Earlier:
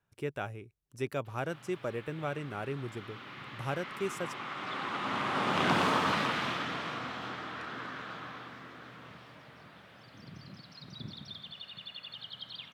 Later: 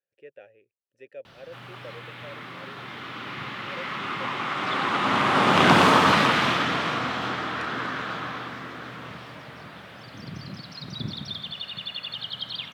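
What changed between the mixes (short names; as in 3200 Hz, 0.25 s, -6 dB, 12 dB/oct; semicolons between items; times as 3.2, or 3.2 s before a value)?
speech: add vowel filter e; background +11.0 dB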